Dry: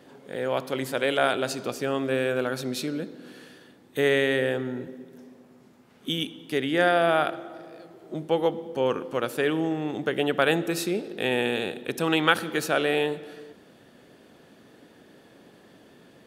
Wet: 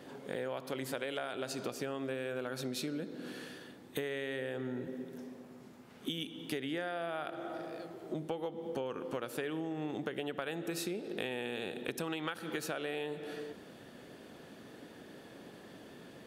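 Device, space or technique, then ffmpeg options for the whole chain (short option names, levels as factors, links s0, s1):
serial compression, leveller first: -af "acompressor=threshold=0.0562:ratio=2.5,acompressor=threshold=0.0158:ratio=6,volume=1.12"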